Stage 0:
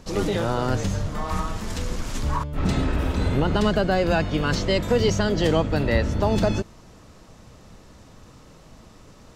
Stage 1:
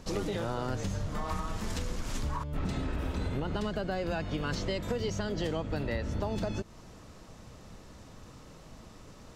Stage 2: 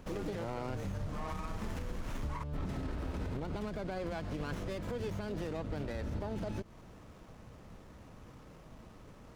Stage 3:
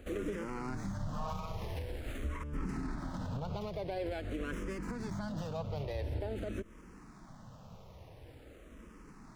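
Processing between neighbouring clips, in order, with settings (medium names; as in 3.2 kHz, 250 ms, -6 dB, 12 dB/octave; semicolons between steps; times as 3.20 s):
compression, threshold -27 dBFS, peak gain reduction 11.5 dB; trim -2.5 dB
peak limiter -26.5 dBFS, peak gain reduction 6.5 dB; sliding maximum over 9 samples; trim -2.5 dB
barber-pole phaser -0.47 Hz; trim +3 dB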